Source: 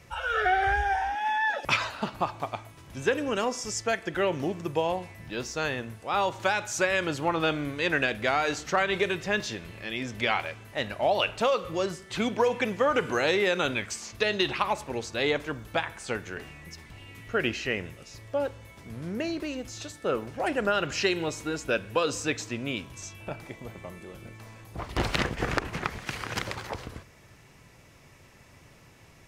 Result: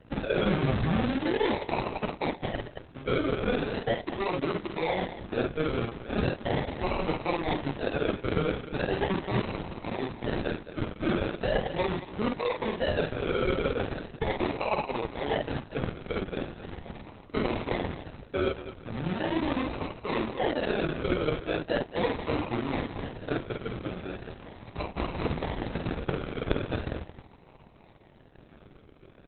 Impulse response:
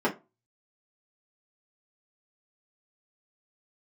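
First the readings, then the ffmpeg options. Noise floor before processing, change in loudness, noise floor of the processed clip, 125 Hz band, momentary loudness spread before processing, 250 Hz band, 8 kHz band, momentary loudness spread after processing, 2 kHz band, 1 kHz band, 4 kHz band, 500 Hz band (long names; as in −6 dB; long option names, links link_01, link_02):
−54 dBFS, −2.5 dB, −54 dBFS, +4.5 dB, 15 LU, +3.0 dB, below −40 dB, 8 LU, −7.0 dB, −4.5 dB, −5.5 dB, −1.0 dB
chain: -filter_complex "[0:a]acrossover=split=6300[link_01][link_02];[link_02]acompressor=threshold=-52dB:ratio=4:attack=1:release=60[link_03];[link_01][link_03]amix=inputs=2:normalize=0,highshelf=frequency=7700:gain=6,bandreject=frequency=50:width_type=h:width=6,bandreject=frequency=100:width_type=h:width=6,bandreject=frequency=150:width_type=h:width=6,bandreject=frequency=200:width_type=h:width=6,bandreject=frequency=250:width_type=h:width=6,bandreject=frequency=300:width_type=h:width=6,bandreject=frequency=350:width_type=h:width=6,areverse,acompressor=threshold=-35dB:ratio=4,areverse,acrusher=samples=37:mix=1:aa=0.000001:lfo=1:lforange=22.2:lforate=0.39,aeval=exprs='sgn(val(0))*max(abs(val(0))-0.0015,0)':channel_layout=same,asplit=2[link_04][link_05];[link_05]aecho=0:1:49.56|224.5:0.631|0.316[link_06];[link_04][link_06]amix=inputs=2:normalize=0,volume=9dB" -ar 48000 -c:a libopus -b:a 6k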